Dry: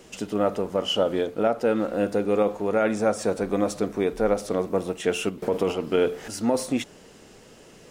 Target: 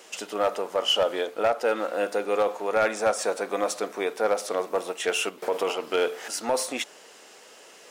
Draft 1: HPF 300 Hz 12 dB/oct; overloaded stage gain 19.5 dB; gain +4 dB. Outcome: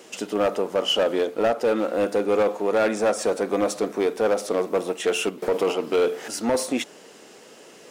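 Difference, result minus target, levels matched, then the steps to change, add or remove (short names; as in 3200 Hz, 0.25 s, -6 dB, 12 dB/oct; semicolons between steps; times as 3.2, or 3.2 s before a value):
250 Hz band +6.0 dB
change: HPF 630 Hz 12 dB/oct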